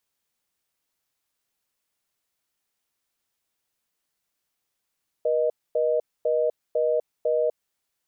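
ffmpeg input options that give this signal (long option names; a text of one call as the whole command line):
ffmpeg -f lavfi -i "aevalsrc='0.075*(sin(2*PI*480*t)+sin(2*PI*620*t))*clip(min(mod(t,0.5),0.25-mod(t,0.5))/0.005,0,1)':duration=2.45:sample_rate=44100" out.wav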